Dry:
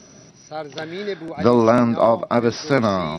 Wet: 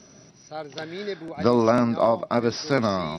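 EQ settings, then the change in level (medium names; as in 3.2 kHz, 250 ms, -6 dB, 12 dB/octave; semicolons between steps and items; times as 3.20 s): dynamic bell 5 kHz, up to +5 dB, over -49 dBFS, Q 3.2; -4.5 dB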